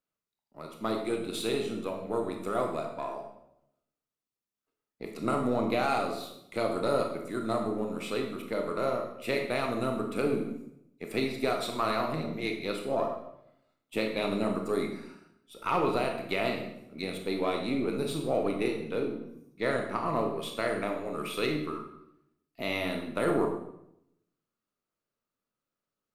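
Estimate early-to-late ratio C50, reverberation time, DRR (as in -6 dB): 6.0 dB, 0.80 s, 2.5 dB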